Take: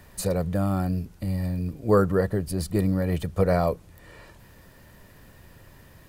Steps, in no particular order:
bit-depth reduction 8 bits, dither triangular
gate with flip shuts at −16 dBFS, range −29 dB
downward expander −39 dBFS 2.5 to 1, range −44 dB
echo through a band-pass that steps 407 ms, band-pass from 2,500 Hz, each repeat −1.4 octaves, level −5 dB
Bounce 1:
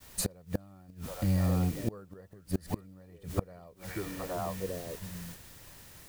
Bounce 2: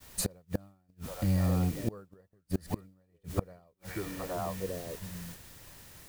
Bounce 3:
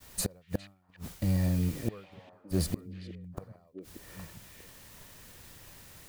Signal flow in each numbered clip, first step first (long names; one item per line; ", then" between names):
echo through a band-pass that steps, then bit-depth reduction, then downward expander, then gate with flip
echo through a band-pass that steps, then bit-depth reduction, then gate with flip, then downward expander
bit-depth reduction, then gate with flip, then downward expander, then echo through a band-pass that steps